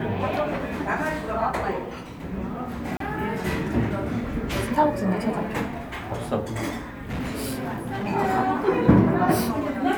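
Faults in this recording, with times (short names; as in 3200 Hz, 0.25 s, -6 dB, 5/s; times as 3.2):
2.97–3 gap 33 ms
7.09–8.08 clipped -25.5 dBFS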